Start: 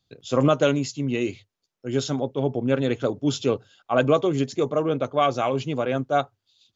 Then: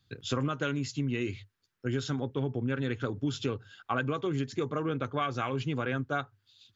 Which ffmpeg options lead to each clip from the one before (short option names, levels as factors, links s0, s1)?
-af "equalizer=f=100:t=o:w=0.67:g=8,equalizer=f=630:t=o:w=0.67:g=-10,equalizer=f=1600:t=o:w=0.67:g=8,equalizer=f=6300:t=o:w=0.67:g=-4,acompressor=threshold=0.0316:ratio=6,volume=1.26"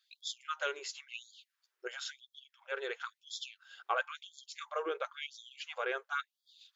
-af "afftfilt=real='re*gte(b*sr/1024,340*pow(3300/340,0.5+0.5*sin(2*PI*0.97*pts/sr)))':imag='im*gte(b*sr/1024,340*pow(3300/340,0.5+0.5*sin(2*PI*0.97*pts/sr)))':win_size=1024:overlap=0.75,volume=0.891"